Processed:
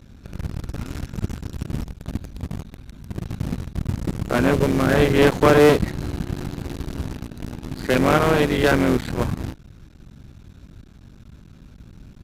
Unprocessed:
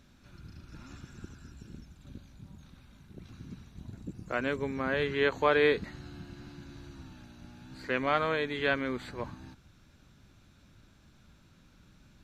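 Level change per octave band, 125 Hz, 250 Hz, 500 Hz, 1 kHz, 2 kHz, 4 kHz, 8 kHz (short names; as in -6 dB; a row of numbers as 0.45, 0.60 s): +19.0 dB, +16.0 dB, +11.5 dB, +10.0 dB, +7.0 dB, +9.0 dB, n/a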